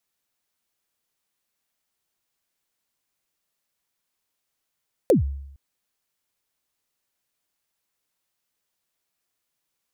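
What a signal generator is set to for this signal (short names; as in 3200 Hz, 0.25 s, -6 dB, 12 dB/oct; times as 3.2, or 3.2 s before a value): kick drum length 0.46 s, from 590 Hz, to 69 Hz, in 0.128 s, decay 0.80 s, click on, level -11 dB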